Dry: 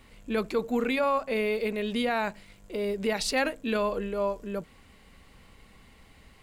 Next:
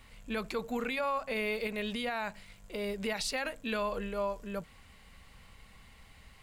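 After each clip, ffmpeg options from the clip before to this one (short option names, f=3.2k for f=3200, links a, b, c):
-af "equalizer=f=330:t=o:w=1.4:g=-9,alimiter=level_in=0.5dB:limit=-24dB:level=0:latency=1:release=80,volume=-0.5dB"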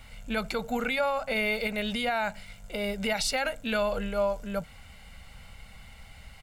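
-af "aecho=1:1:1.4:0.52,volume=5dB"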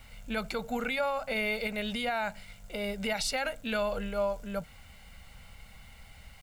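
-af "acrusher=bits=9:mix=0:aa=0.000001,volume=-3dB"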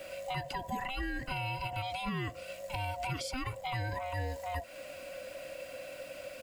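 -filter_complex "[0:a]afftfilt=real='real(if(lt(b,1008),b+24*(1-2*mod(floor(b/24),2)),b),0)':imag='imag(if(lt(b,1008),b+24*(1-2*mod(floor(b/24),2)),b),0)':win_size=2048:overlap=0.75,acrossover=split=150|990[a][b][c];[a]acompressor=threshold=-46dB:ratio=4[d];[b]acompressor=threshold=-47dB:ratio=4[e];[c]acompressor=threshold=-48dB:ratio=4[f];[d][e][f]amix=inputs=3:normalize=0,volume=6dB"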